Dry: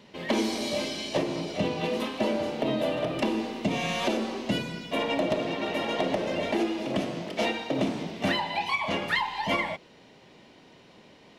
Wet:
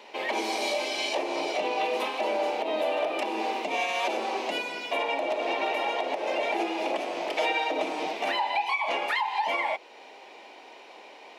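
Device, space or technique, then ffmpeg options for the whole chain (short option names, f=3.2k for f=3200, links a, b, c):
laptop speaker: -filter_complex "[0:a]highpass=f=350:w=0.5412,highpass=f=350:w=1.3066,equalizer=f=820:t=o:w=0.58:g=9.5,equalizer=f=2.4k:t=o:w=0.27:g=8,alimiter=limit=-22.5dB:level=0:latency=1:release=286,asettb=1/sr,asplit=3[a][b][c];[a]atrim=end=7.344[d];[b]atrim=start=7.34:end=8.13,asetpts=PTS-STARTPTS,afade=t=in:d=0.004:c=qsin,afade=t=out:st=0.786:d=0.004:c=qsin,aecho=1:1:6.4:0.64,atrim=end_sample=34839[e];[c]atrim=start=8.126[f];[d][e]acrossfade=d=0.004:c1=hsin:c2=qsin[g];[g][f]acrossfade=d=0.004:c1=qsin:c2=hsin,volume=4dB"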